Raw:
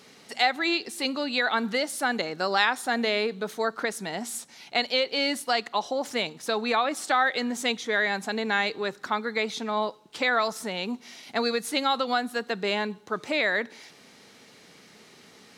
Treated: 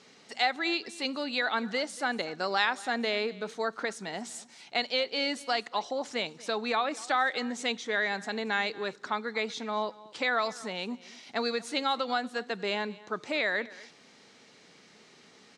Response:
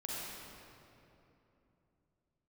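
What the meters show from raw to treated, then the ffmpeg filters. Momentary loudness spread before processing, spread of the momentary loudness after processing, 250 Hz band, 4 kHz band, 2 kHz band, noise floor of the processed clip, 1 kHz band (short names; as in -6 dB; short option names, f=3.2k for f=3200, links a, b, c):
8 LU, 9 LU, -5.0 dB, -4.0 dB, -4.0 dB, -57 dBFS, -4.0 dB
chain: -af "lowpass=f=8.3k:w=0.5412,lowpass=f=8.3k:w=1.3066,lowshelf=f=95:g=-6.5,aecho=1:1:235:0.0944,volume=-4dB"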